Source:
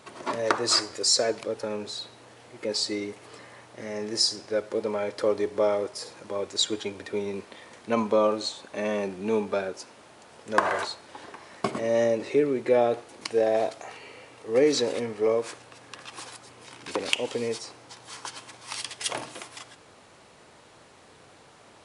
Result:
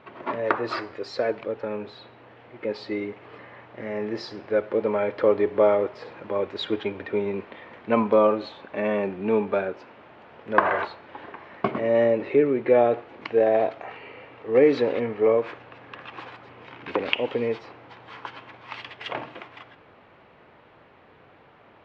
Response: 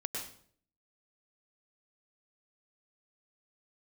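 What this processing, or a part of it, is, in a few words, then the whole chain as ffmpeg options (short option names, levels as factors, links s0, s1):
action camera in a waterproof case: -af "lowpass=f=2800:w=0.5412,lowpass=f=2800:w=1.3066,dynaudnorm=f=610:g=13:m=1.78,volume=1.12" -ar 48000 -c:a aac -b:a 96k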